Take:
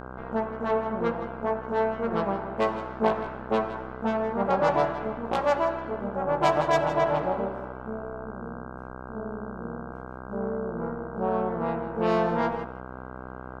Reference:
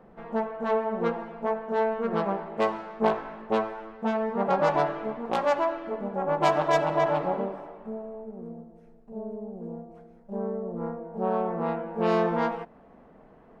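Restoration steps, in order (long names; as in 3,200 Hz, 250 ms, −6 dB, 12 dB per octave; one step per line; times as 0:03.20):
hum removal 63.6 Hz, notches 25
echo removal 162 ms −12.5 dB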